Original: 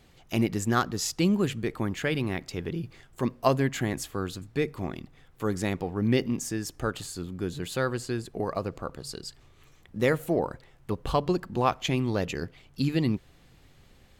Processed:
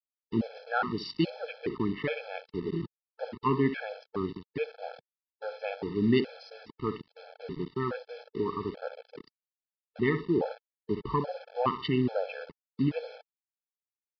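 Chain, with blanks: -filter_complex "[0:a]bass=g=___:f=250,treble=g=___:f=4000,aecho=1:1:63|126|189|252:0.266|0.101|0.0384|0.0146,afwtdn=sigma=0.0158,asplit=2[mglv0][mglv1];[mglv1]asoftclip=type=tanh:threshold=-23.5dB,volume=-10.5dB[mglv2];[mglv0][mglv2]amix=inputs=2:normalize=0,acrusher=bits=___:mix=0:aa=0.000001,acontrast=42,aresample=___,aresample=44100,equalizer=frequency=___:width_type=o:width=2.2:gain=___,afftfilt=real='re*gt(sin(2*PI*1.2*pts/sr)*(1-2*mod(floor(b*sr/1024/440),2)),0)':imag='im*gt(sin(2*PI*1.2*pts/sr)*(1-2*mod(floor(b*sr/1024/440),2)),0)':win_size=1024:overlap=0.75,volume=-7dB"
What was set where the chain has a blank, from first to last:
-15, 3, 6, 11025, 160, 10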